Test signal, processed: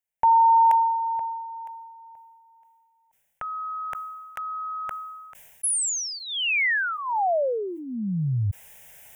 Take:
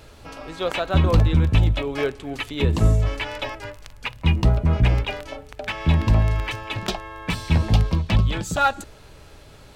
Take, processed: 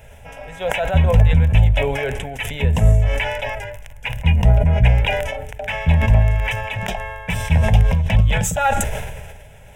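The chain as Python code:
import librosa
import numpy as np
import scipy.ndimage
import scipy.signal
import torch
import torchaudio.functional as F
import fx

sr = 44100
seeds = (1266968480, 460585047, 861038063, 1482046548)

y = fx.fixed_phaser(x, sr, hz=1200.0, stages=6)
y = fx.sustainer(y, sr, db_per_s=34.0)
y = y * 10.0 ** (4.0 / 20.0)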